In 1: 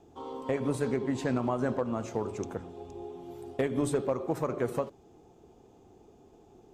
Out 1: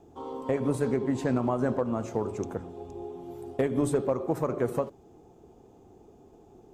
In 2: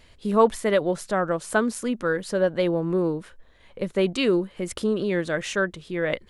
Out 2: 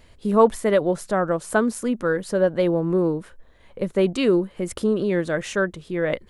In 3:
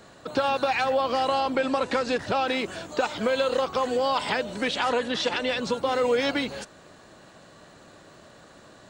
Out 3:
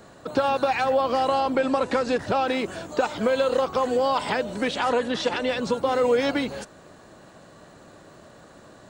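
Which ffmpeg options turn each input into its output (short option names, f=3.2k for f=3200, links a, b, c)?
-af "equalizer=f=3.5k:t=o:w=2.4:g=-5.5,volume=3dB"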